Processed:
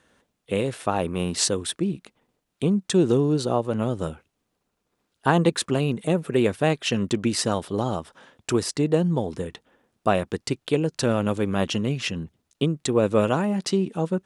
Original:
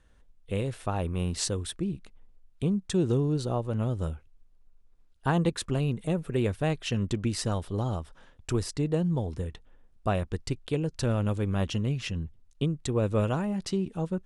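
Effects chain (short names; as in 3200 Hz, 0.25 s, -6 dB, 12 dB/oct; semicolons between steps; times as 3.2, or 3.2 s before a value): HPF 190 Hz 12 dB/oct; gain +8 dB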